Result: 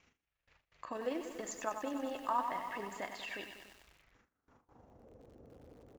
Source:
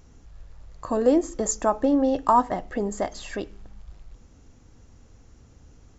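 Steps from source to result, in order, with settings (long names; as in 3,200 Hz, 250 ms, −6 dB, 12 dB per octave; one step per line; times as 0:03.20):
amplitude modulation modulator 25 Hz, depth 30%
on a send: repeating echo 95 ms, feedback 15%, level −16 dB
on the sum: band-pass filter sweep 2,400 Hz → 540 Hz, 0:03.97–0:05.11
low-shelf EQ 480 Hz +11 dB
in parallel at +2.5 dB: downward compressor, threshold −50 dBFS, peak gain reduction 20 dB
on the sum: noise gate with hold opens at −52 dBFS
feedback echo at a low word length 96 ms, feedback 80%, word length 9 bits, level −8 dB
level −2.5 dB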